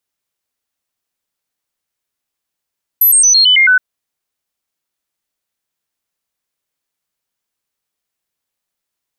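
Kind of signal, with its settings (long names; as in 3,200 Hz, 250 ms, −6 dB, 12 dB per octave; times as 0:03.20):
stepped sweep 12,000 Hz down, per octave 2, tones 7, 0.11 s, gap 0.00 s −5.5 dBFS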